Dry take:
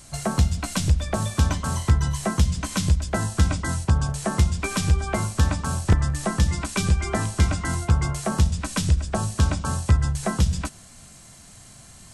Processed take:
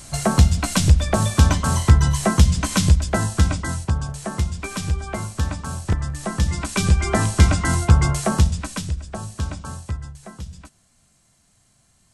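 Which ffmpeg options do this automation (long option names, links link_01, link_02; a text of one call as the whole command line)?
ffmpeg -i in.wav -af "volume=15dB,afade=type=out:start_time=2.74:duration=1.3:silence=0.354813,afade=type=in:start_time=6.16:duration=1.13:silence=0.354813,afade=type=out:start_time=8.15:duration=0.73:silence=0.251189,afade=type=out:start_time=9.62:duration=0.54:silence=0.398107" out.wav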